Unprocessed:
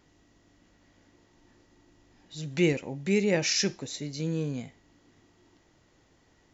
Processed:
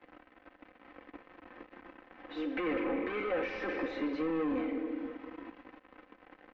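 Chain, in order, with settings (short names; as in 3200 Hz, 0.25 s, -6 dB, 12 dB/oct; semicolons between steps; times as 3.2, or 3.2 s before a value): elliptic high-pass 280 Hz; shoebox room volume 2000 m³, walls mixed, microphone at 0.88 m; limiter -22.5 dBFS, peak gain reduction 8.5 dB; sample leveller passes 5; LPF 2300 Hz 24 dB/oct; comb 3.9 ms, depth 69%; three-band squash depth 40%; gain -8 dB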